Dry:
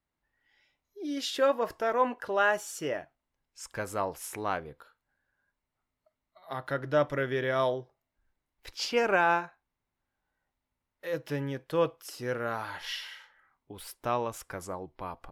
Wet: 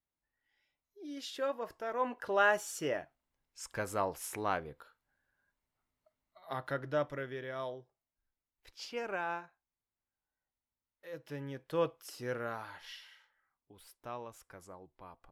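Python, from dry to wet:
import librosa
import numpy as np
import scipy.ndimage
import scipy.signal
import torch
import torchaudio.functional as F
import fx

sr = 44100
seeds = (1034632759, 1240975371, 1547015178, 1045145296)

y = fx.gain(x, sr, db=fx.line((1.86, -10.0), (2.33, -2.0), (6.53, -2.0), (7.44, -12.5), (11.12, -12.5), (11.78, -5.0), (12.39, -5.0), (13.0, -13.5)))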